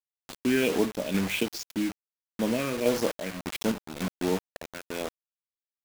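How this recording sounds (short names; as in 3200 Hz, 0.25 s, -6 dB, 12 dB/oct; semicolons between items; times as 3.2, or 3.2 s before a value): phasing stages 4, 1.4 Hz, lowest notch 750–2900 Hz; a quantiser's noise floor 6-bit, dither none; random-step tremolo 3.5 Hz, depth 55%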